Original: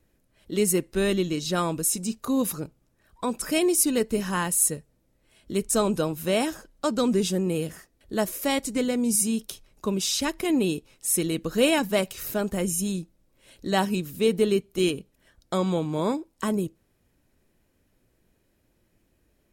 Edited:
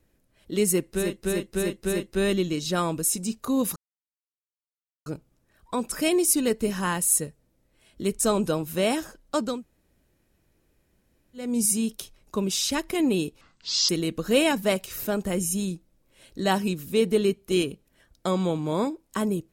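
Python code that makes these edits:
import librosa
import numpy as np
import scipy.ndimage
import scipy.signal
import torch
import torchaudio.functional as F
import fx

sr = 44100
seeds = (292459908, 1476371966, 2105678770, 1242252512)

y = fx.edit(x, sr, fx.repeat(start_s=0.75, length_s=0.3, count=5, crossfade_s=0.24),
    fx.insert_silence(at_s=2.56, length_s=1.3),
    fx.room_tone_fill(start_s=7.02, length_s=1.93, crossfade_s=0.24),
    fx.speed_span(start_s=10.91, length_s=0.25, speed=0.52), tone=tone)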